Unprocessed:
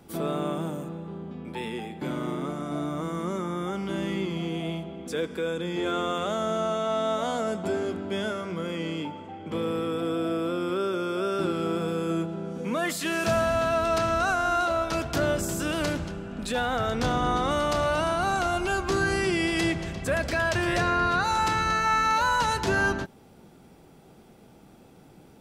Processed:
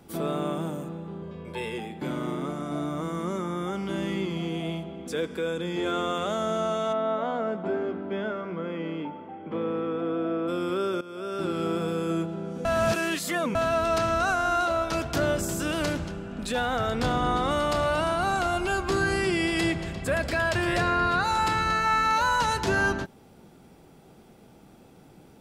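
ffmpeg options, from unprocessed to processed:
-filter_complex "[0:a]asettb=1/sr,asplit=3[a][b][c];[a]atrim=end=1.224[d];[b]atrim=start=1.22:end=1.78,asetpts=PTS-STARTPTS,afade=t=in:d=0.004:c=qsin,afade=t=out:st=0.556:d=0.004:c=qsin,aecho=1:1:1.9:0.74,atrim=end_sample=24696[e];[c]atrim=start=1.776[f];[d][e]acrossfade=d=0.004:c1=hsin:c2=qsin[g];[g][f]acrossfade=d=0.004:c1=qsin:c2=hsin,asplit=3[h][i][j];[h]afade=t=out:st=6.92:d=0.02[k];[i]highpass=160,lowpass=2k,afade=t=in:st=6.92:d=0.02,afade=t=out:st=10.47:d=0.02[l];[j]afade=t=in:st=10.47:d=0.02[m];[k][l][m]amix=inputs=3:normalize=0,asettb=1/sr,asplit=3[n][o][p];[n]atrim=end=16.874[q];[o]atrim=start=16.87:end=22.13,asetpts=PTS-STARTPTS,afade=t=in:d=0.004:c=qsin,afade=t=out:st=5.256:d=0.004:c=qsin,bandreject=f=6k:w=8.7[r];[p]atrim=start=22.126[s];[q][r]acrossfade=d=0.004:c1=hsin:c2=qsin[t];[t][s]acrossfade=d=0.004:c1=qsin:c2=hsin,asplit=4[u][v][w][x];[u]atrim=end=11.01,asetpts=PTS-STARTPTS,afade=t=out:st=11.006:d=0.004:c=hsin:silence=0.149624[y];[v]atrim=start=11.01:end=12.652,asetpts=PTS-STARTPTS,afade=t=in:d=0.6:silence=0.149624[z];[w]atrim=start=12.648:end=13.552,asetpts=PTS-STARTPTS,areverse[aa];[x]atrim=start=13.548[ab];[y][z]concat=n=2:v=0:a=1[ac];[ac][aa]acrossfade=d=0.004:c1=hsin:c2=hsin[ad];[ad][ab]acrossfade=d=0.004:c1=hsin:c2=hsin"

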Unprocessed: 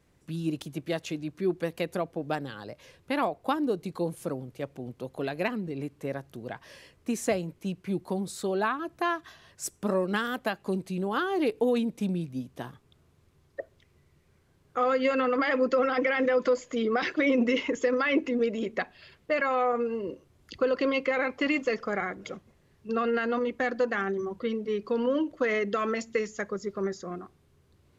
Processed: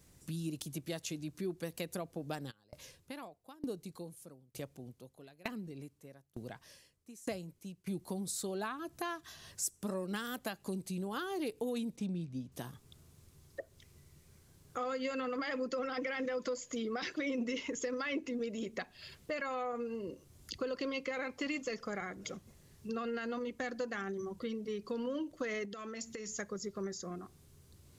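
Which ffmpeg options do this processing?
-filter_complex "[0:a]asplit=3[a][b][c];[a]afade=t=out:st=2.5:d=0.02[d];[b]aeval=exprs='val(0)*pow(10,-30*if(lt(mod(1.1*n/s,1),2*abs(1.1)/1000),1-mod(1.1*n/s,1)/(2*abs(1.1)/1000),(mod(1.1*n/s,1)-2*abs(1.1)/1000)/(1-2*abs(1.1)/1000))/20)':c=same,afade=t=in:st=2.5:d=0.02,afade=t=out:st=7.86:d=0.02[e];[c]afade=t=in:st=7.86:d=0.02[f];[d][e][f]amix=inputs=3:normalize=0,asettb=1/sr,asplit=3[g][h][i];[g]atrim=end=11.964[j];[h]atrim=start=11.96:end=12.52,asetpts=PTS-STARTPTS,afade=t=in:d=0.004:c=qsin,afade=t=out:st=0.556:d=0.004:c=qsin,adynamicsmooth=sensitivity=6.5:basefreq=4.9k[k];[i]atrim=start=12.516[l];[j][k]acrossfade=d=0.004:c1=hsin:c2=qsin[m];[m][l]acrossfade=d=0.004:c1=qsin:c2=hsin,asettb=1/sr,asplit=3[n][o][p];[n]atrim=end=25.654[q];[o]atrim=start=25.65:end=26.31,asetpts=PTS-STARTPTS,afade=t=in:d=0.004:c=qsin,afade=t=out:st=0.656:d=0.004:c=qsin,acompressor=threshold=-36dB:ratio=6:attack=3.2:release=140:knee=1:detection=peak[r];[p]atrim=start=26.306[s];[q][r]acrossfade=d=0.004:c1=hsin:c2=qsin[t];[t][s]acrossfade=d=0.004:c1=qsin:c2=hsin,bass=f=250:g=5,treble=f=4k:g=14,acompressor=threshold=-42dB:ratio=2,volume=-1.5dB"

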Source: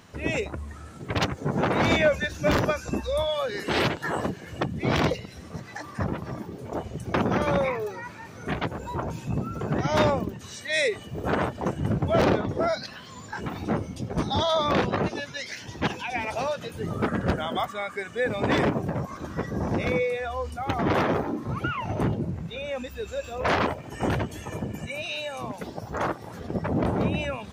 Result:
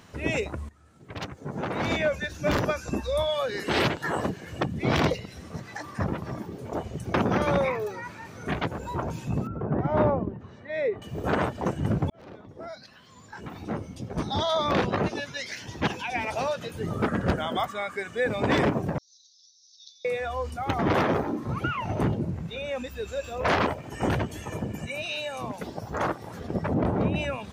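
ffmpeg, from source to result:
-filter_complex "[0:a]asettb=1/sr,asplit=3[a][b][c];[a]atrim=end=9.474[d];[b]atrim=start=9.47:end=11.02,asetpts=PTS-STARTPTS,afade=t=in:d=0.004:c=qsin,afade=t=out:st=1.546:d=0.004:c=qsin,lowpass=1.1k[e];[c]atrim=start=11.016[f];[d][e]acrossfade=d=0.004:c1=hsin:c2=qsin[g];[g][f]acrossfade=d=0.004:c1=qsin:c2=hsin,asettb=1/sr,asplit=3[h][i][j];[h]atrim=end=18.984[k];[i]atrim=start=18.98:end=20.05,asetpts=PTS-STARTPTS,afade=t=in:d=0.004:c=qsin,afade=t=out:st=1.066:d=0.004:c=qsin,asuperpass=centerf=4900:order=12:qfactor=1.8[l];[j]atrim=start=20.046[m];[k][l]acrossfade=d=0.004:c1=hsin:c2=qsin[n];[n][m]acrossfade=d=0.004:c1=qsin:c2=hsin,asettb=1/sr,asplit=3[o][p][q];[o]atrim=end=26.744[r];[p]atrim=start=26.74:end=27.16,asetpts=PTS-STARTPTS,afade=t=in:d=0.004:c=qsin,afade=t=out:st=0.416:d=0.004:c=qsin,highshelf=f=3k:g=-10[s];[q]atrim=start=27.156[t];[r][s]acrossfade=d=0.004:c1=hsin:c2=qsin[u];[u][t]acrossfade=d=0.004:c1=qsin:c2=hsin,asplit=3[v][w][x];[v]atrim=end=0.69,asetpts=PTS-STARTPTS,afade=t=out:st=0.686:d=0.004:c=hsin:silence=0.11885[y];[w]atrim=start=0.69:end=12.1,asetpts=PTS-STARTPTS,afade=t=in:d=2.53:silence=0.11885,afade=t=out:st=11.406:d=0.004:c=hsin[z];[x]atrim=start=12.1,asetpts=PTS-STARTPTS,afade=t=in:d=3[aa];[y][z][aa]concat=n=3:v=0:a=1"

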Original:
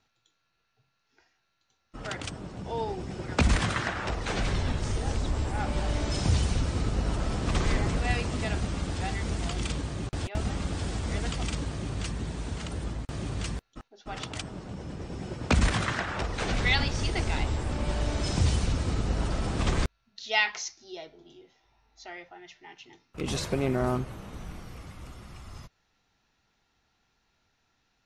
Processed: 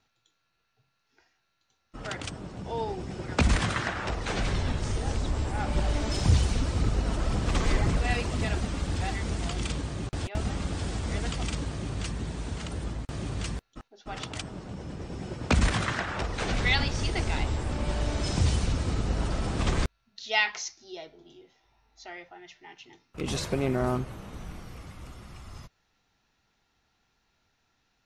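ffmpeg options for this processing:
-filter_complex "[0:a]asplit=3[a][b][c];[a]afade=t=out:st=5.7:d=0.02[d];[b]aphaser=in_gain=1:out_gain=1:delay=4.7:decay=0.34:speed=1.9:type=triangular,afade=t=in:st=5.7:d=0.02,afade=t=out:st=9.18:d=0.02[e];[c]afade=t=in:st=9.18:d=0.02[f];[d][e][f]amix=inputs=3:normalize=0"

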